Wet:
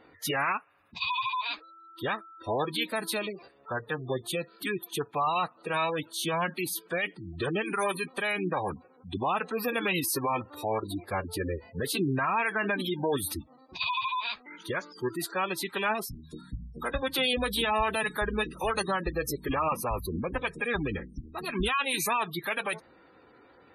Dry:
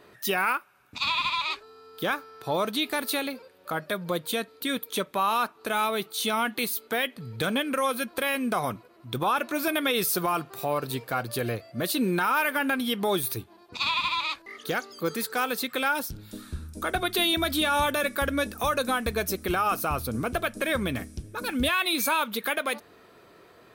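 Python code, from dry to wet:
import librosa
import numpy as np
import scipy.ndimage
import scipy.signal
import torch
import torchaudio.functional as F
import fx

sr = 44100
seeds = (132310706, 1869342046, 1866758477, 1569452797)

y = fx.pitch_keep_formants(x, sr, semitones=-5.0)
y = fx.spec_gate(y, sr, threshold_db=-20, keep='strong')
y = y * librosa.db_to_amplitude(-2.0)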